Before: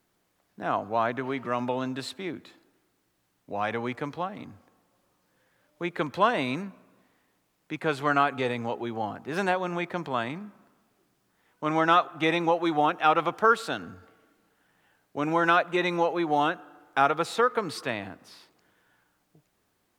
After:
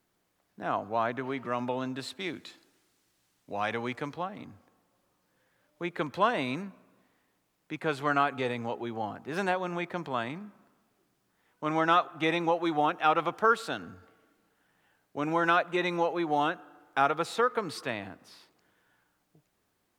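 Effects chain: 2.19–4.12 s: peaking EQ 6.1 kHz +12 dB -> +4 dB 2.8 oct; trim -3 dB

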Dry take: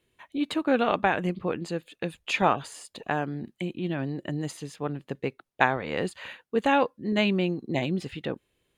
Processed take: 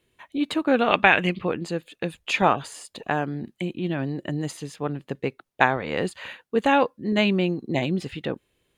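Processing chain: 0.91–1.47 s: peaking EQ 2.6 kHz +12.5 dB 1.4 oct; trim +3 dB

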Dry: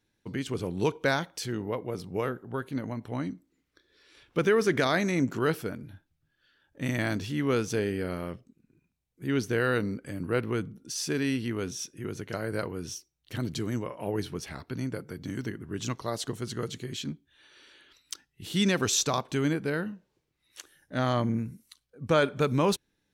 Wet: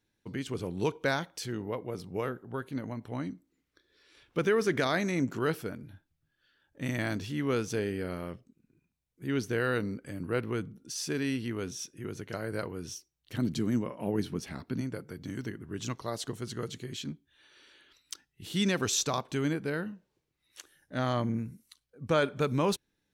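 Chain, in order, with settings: 13.38–14.81 s: peaking EQ 220 Hz +8.5 dB 1 oct; trim -3 dB

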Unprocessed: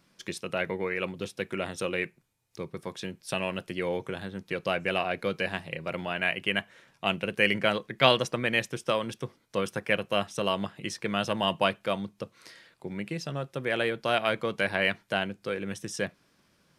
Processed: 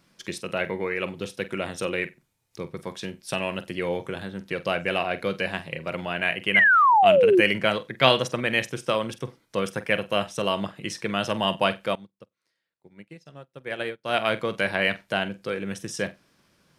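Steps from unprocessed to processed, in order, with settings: flutter echo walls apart 7.9 m, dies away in 0.2 s; 6.54–7.41 s: painted sound fall 330–2200 Hz -19 dBFS; 11.95–14.15 s: upward expansion 2.5:1, over -43 dBFS; trim +2.5 dB

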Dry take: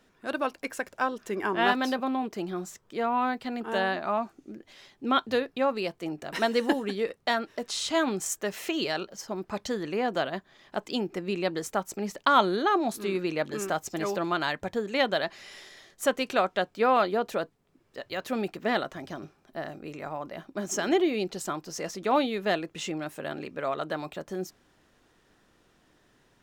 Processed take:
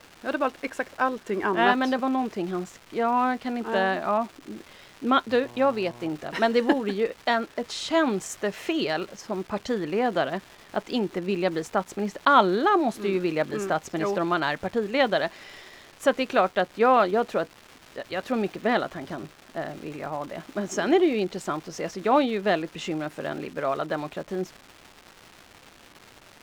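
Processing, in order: crackle 600 per s -36 dBFS; 5.42–6.08 s: mains buzz 120 Hz, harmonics 9, -50 dBFS -2 dB/octave; low-pass 2.8 kHz 6 dB/octave; trim +4 dB

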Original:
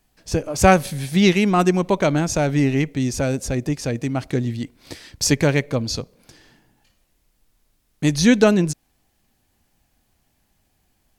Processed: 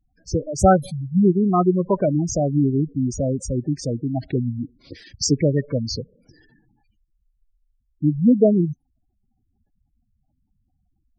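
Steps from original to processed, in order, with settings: spectral gate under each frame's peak -10 dB strong

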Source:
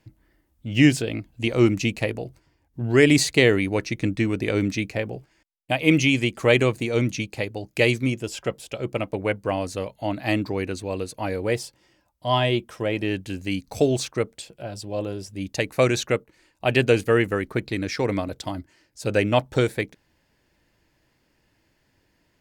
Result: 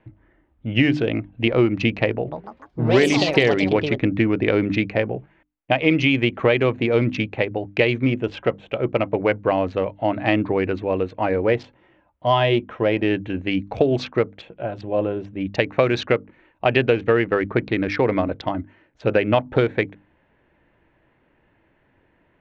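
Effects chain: local Wiener filter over 9 samples; Bessel low-pass 2.9 kHz, order 6; bass shelf 210 Hz -5 dB; hum notches 50/100/150/200/250/300 Hz; compression 6:1, threshold -22 dBFS, peak gain reduction 9.5 dB; 2.12–4.39 s: ever faster or slower copies 159 ms, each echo +5 st, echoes 3, each echo -6 dB; trim +8.5 dB

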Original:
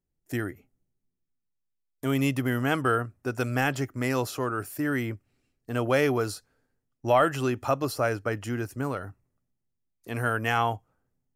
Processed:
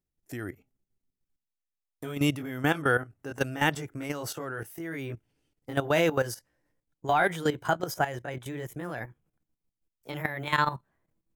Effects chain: pitch bend over the whole clip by +4.5 st starting unshifted; level held to a coarse grid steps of 13 dB; trim +3.5 dB

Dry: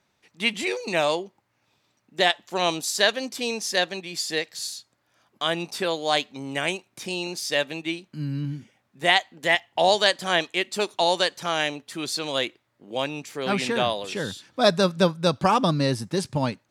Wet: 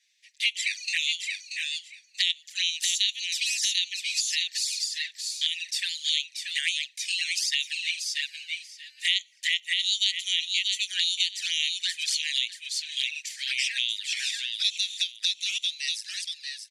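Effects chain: fade out at the end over 1.21 s; treble shelf 4 kHz +11 dB; on a send: feedback delay 633 ms, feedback 16%, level -6.5 dB; on the sum: touch-sensitive flanger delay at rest 6.9 ms, full sweep at -18.5 dBFS; in parallel at -11 dB: one-sided clip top -14.5 dBFS; on the sum: steep high-pass 1.8 kHz 72 dB/octave; compression 2.5:1, threshold -26 dBFS, peak gain reduction 10 dB; low-pass 7.4 kHz 12 dB/octave; trim +2 dB

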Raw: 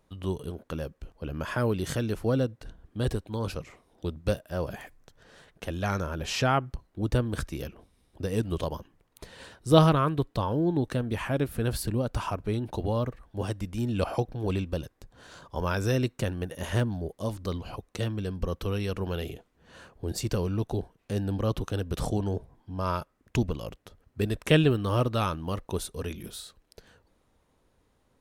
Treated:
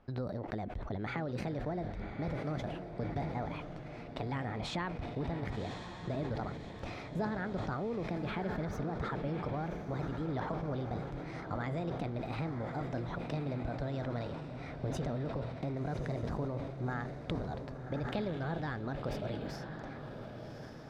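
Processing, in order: peaking EQ 6 kHz -11.5 dB 2 oct; compression 6:1, threshold -39 dBFS, peak gain reduction 23 dB; distance through air 160 m; echo that smears into a reverb 1521 ms, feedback 52%, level -7 dB; speed mistake 33 rpm record played at 45 rpm; decay stretcher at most 43 dB/s; trim +3.5 dB

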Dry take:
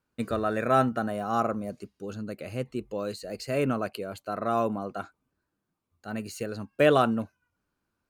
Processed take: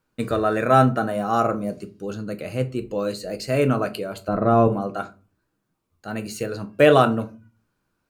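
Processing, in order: 4.28–4.68 s: tilt EQ -3.5 dB/octave; simulated room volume 150 m³, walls furnished, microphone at 0.58 m; trim +5.5 dB

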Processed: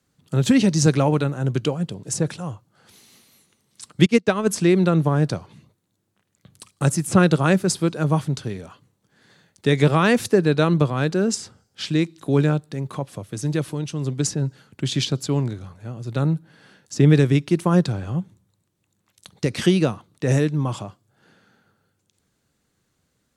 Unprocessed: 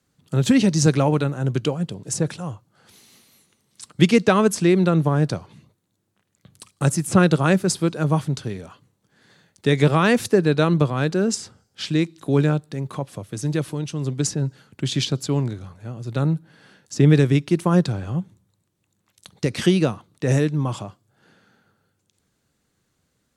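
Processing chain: 4.06–4.47 s: upward expansion 2.5:1, over -28 dBFS

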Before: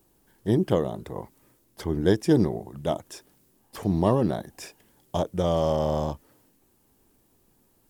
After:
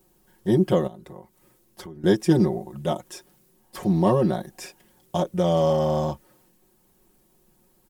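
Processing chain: comb 5.5 ms, depth 80%; 0.87–2.04 s: compression 10:1, threshold -38 dBFS, peak gain reduction 18.5 dB

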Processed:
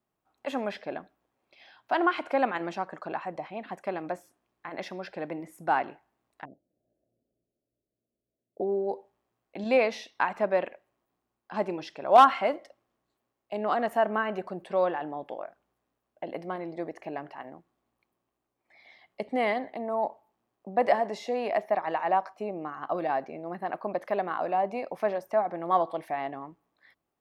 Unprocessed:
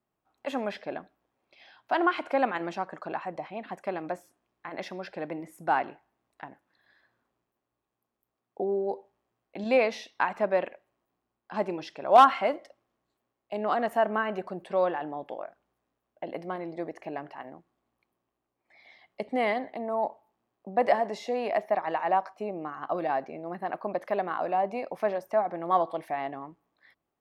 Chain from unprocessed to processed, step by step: 6.45–8.61 s: elliptic low-pass 640 Hz, stop band 40 dB

